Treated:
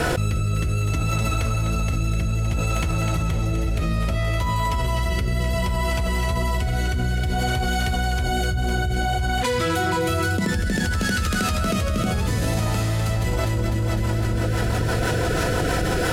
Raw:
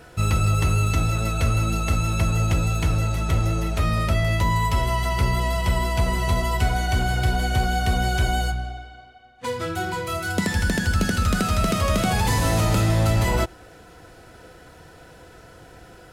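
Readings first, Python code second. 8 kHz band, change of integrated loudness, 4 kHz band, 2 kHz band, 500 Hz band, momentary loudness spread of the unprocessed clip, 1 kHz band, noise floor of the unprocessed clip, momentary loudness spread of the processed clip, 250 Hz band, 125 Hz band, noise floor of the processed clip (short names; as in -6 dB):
0.0 dB, -0.5 dB, +1.0 dB, +1.5 dB, +2.0 dB, 6 LU, -0.5 dB, -47 dBFS, 2 LU, +1.5 dB, 0.0 dB, -23 dBFS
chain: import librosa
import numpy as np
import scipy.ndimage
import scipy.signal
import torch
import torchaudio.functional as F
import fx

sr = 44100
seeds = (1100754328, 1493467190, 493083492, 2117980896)

y = fx.echo_split(x, sr, split_hz=310.0, low_ms=328, high_ms=252, feedback_pct=52, wet_db=-7.5)
y = fx.rotary_switch(y, sr, hz=0.6, then_hz=6.0, switch_at_s=12.97)
y = fx.env_flatten(y, sr, amount_pct=100)
y = F.gain(torch.from_numpy(y), -6.5).numpy()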